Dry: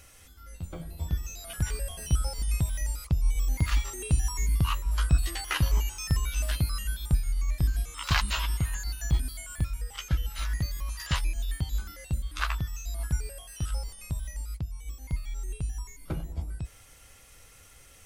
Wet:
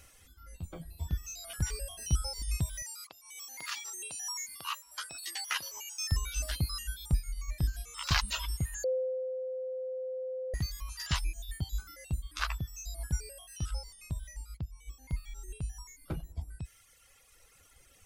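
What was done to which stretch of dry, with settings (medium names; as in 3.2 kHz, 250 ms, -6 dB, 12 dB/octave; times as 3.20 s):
2.82–6.12 s: high-pass 760 Hz
8.84–10.54 s: bleep 516 Hz -22.5 dBFS
13.57–15.10 s: treble shelf 9.6 kHz -6.5 dB
whole clip: reverb removal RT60 2 s; dynamic bell 5.4 kHz, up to +7 dB, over -54 dBFS, Q 1.7; trim -3.5 dB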